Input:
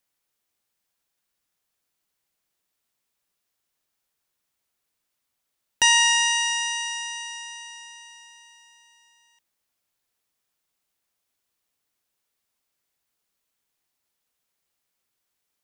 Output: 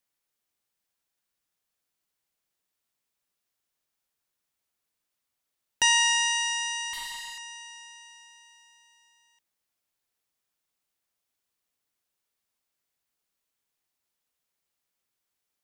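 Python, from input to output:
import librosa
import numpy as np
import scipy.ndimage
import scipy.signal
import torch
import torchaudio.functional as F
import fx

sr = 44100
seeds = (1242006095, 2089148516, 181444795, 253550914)

y = fx.doppler_dist(x, sr, depth_ms=0.15, at=(6.93, 7.38))
y = F.gain(torch.from_numpy(y), -4.0).numpy()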